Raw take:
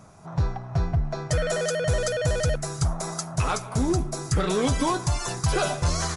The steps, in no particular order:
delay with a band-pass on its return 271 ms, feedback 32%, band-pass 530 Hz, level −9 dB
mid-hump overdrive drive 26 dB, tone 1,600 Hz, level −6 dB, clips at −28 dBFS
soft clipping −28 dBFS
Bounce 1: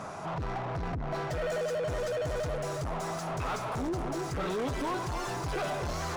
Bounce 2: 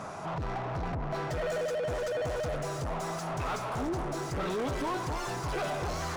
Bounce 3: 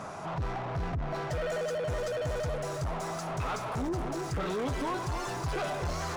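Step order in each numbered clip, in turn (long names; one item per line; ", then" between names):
delay with a band-pass on its return, then soft clipping, then mid-hump overdrive
soft clipping, then delay with a band-pass on its return, then mid-hump overdrive
delay with a band-pass on its return, then mid-hump overdrive, then soft clipping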